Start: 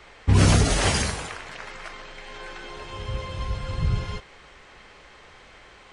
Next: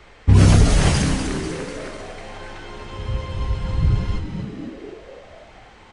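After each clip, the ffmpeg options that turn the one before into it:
-filter_complex "[0:a]lowshelf=f=410:g=7,asplit=2[s0][s1];[s1]asplit=8[s2][s3][s4][s5][s6][s7][s8][s9];[s2]adelay=247,afreqshift=-120,volume=0.398[s10];[s3]adelay=494,afreqshift=-240,volume=0.24[s11];[s4]adelay=741,afreqshift=-360,volume=0.143[s12];[s5]adelay=988,afreqshift=-480,volume=0.0861[s13];[s6]adelay=1235,afreqshift=-600,volume=0.0519[s14];[s7]adelay=1482,afreqshift=-720,volume=0.0309[s15];[s8]adelay=1729,afreqshift=-840,volume=0.0186[s16];[s9]adelay=1976,afreqshift=-960,volume=0.0111[s17];[s10][s11][s12][s13][s14][s15][s16][s17]amix=inputs=8:normalize=0[s18];[s0][s18]amix=inputs=2:normalize=0,volume=0.891"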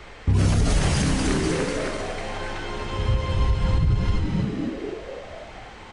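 -filter_complex "[0:a]asplit=2[s0][s1];[s1]acompressor=threshold=0.0891:ratio=6,volume=0.75[s2];[s0][s2]amix=inputs=2:normalize=0,alimiter=limit=0.251:level=0:latency=1:release=148"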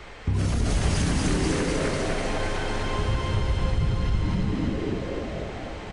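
-filter_complex "[0:a]acompressor=threshold=0.0562:ratio=2,asplit=2[s0][s1];[s1]aecho=0:1:250|575|997.5|1547|2261:0.631|0.398|0.251|0.158|0.1[s2];[s0][s2]amix=inputs=2:normalize=0"

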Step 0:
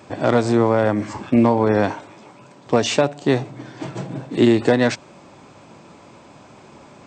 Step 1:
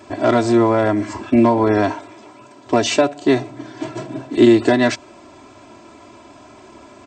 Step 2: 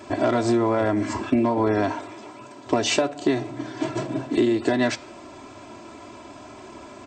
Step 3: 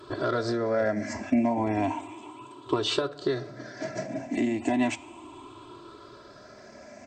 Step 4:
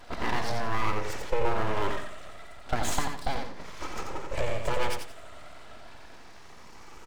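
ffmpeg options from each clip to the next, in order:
-af "aecho=1:1:3:0.85"
-af "acompressor=threshold=0.126:ratio=10,flanger=delay=4.2:depth=6.9:regen=-90:speed=1.3:shape=triangular,volume=1.88"
-af "afftfilt=real='re*pow(10,14/40*sin(2*PI*(0.62*log(max(b,1)*sr/1024/100)/log(2)-(0.34)*(pts-256)/sr)))':imag='im*pow(10,14/40*sin(2*PI*(0.62*log(max(b,1)*sr/1024/100)/log(2)-(0.34)*(pts-256)/sr)))':win_size=1024:overlap=0.75,volume=0.447"
-filter_complex "[0:a]aeval=exprs='abs(val(0))':c=same,asplit=2[s0][s1];[s1]aecho=0:1:88|176|264:0.531|0.133|0.0332[s2];[s0][s2]amix=inputs=2:normalize=0"

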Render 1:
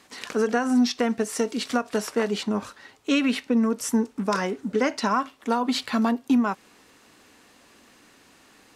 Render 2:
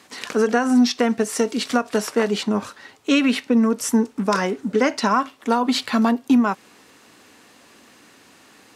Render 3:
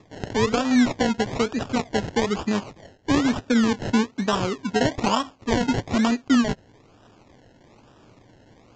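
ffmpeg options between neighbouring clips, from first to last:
-af "highpass=83,volume=1.68"
-af "acrusher=samples=29:mix=1:aa=0.000001:lfo=1:lforange=17.4:lforate=1.1,aresample=16000,aresample=44100,equalizer=f=110:t=o:w=0.67:g=8,volume=0.708"

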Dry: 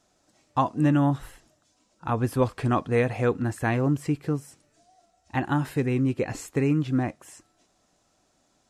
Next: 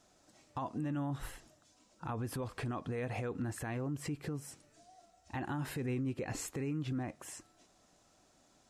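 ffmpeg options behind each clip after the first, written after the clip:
-af "acompressor=threshold=0.0708:ratio=6,alimiter=level_in=1.88:limit=0.0631:level=0:latency=1:release=130,volume=0.531"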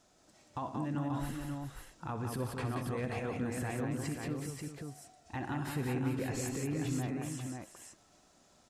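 -af "aecho=1:1:64|109|179|394|535:0.237|0.178|0.596|0.282|0.562"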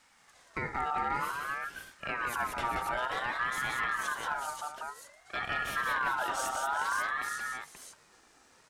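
-af "aeval=exprs='0.0398*(abs(mod(val(0)/0.0398+3,4)-2)-1)':c=same,aeval=exprs='val(0)*sin(2*PI*1300*n/s+1300*0.2/0.54*sin(2*PI*0.54*n/s))':c=same,volume=2"

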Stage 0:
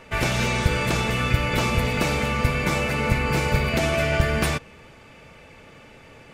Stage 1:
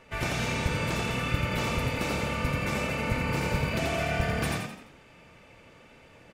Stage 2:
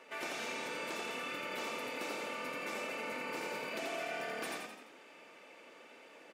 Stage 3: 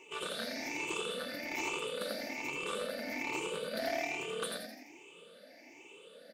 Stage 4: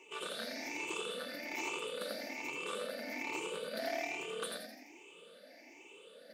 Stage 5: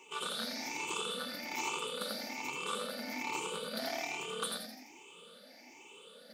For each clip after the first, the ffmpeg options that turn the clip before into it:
-filter_complex "[0:a]asplit=6[s0][s1][s2][s3][s4][s5];[s1]adelay=85,afreqshift=37,volume=0.708[s6];[s2]adelay=170,afreqshift=74,volume=0.299[s7];[s3]adelay=255,afreqshift=111,volume=0.124[s8];[s4]adelay=340,afreqshift=148,volume=0.0525[s9];[s5]adelay=425,afreqshift=185,volume=0.0221[s10];[s0][s6][s7][s8][s9][s10]amix=inputs=6:normalize=0,volume=0.376"
-af "highpass=f=280:w=0.5412,highpass=f=280:w=1.3066,acompressor=threshold=0.00316:ratio=1.5,volume=0.891"
-filter_complex "[0:a]afftfilt=real='re*pow(10,19/40*sin(2*PI*(0.7*log(max(b,1)*sr/1024/100)/log(2)-(1.2)*(pts-256)/sr)))':imag='im*pow(10,19/40*sin(2*PI*(0.7*log(max(b,1)*sr/1024/100)/log(2)-(1.2)*(pts-256)/sr)))':win_size=1024:overlap=0.75,acrossover=split=760|1900[s0][s1][s2];[s1]acrusher=bits=5:mix=0:aa=0.5[s3];[s0][s3][s2]amix=inputs=3:normalize=0"
-af "highpass=190,areverse,acompressor=mode=upward:threshold=0.00355:ratio=2.5,areverse,volume=0.75"
-af "superequalizer=6b=0.398:7b=0.501:8b=0.398:11b=0.447:12b=0.562,volume=1.88"

